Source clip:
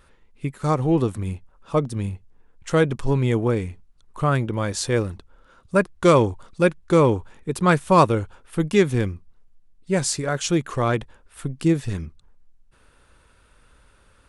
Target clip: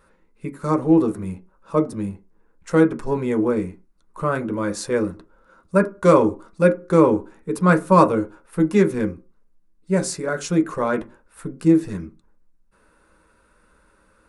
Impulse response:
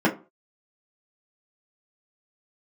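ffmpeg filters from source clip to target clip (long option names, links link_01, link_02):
-filter_complex "[0:a]equalizer=frequency=200:width_type=o:width=0.33:gain=-5,equalizer=frequency=1250:width_type=o:width=0.33:gain=5,equalizer=frequency=3150:width_type=o:width=0.33:gain=-8,equalizer=frequency=10000:width_type=o:width=0.33:gain=3,asplit=2[link_01][link_02];[1:a]atrim=start_sample=2205[link_03];[link_02][link_03]afir=irnorm=-1:irlink=0,volume=-17dB[link_04];[link_01][link_04]amix=inputs=2:normalize=0,volume=-5dB"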